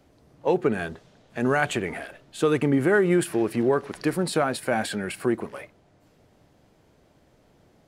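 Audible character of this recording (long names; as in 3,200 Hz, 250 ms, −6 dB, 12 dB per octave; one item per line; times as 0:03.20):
background noise floor −61 dBFS
spectral slope −5.0 dB per octave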